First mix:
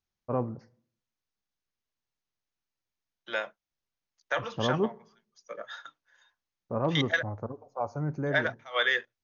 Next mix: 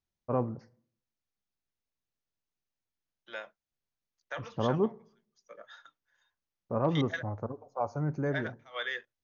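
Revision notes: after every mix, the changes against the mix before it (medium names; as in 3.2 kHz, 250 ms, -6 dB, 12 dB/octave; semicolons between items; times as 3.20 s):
second voice -9.5 dB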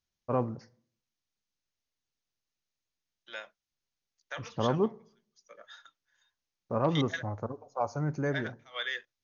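second voice -4.0 dB; master: add treble shelf 2.2 kHz +10.5 dB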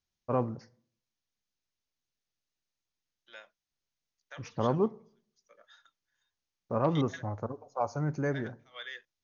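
second voice -8.0 dB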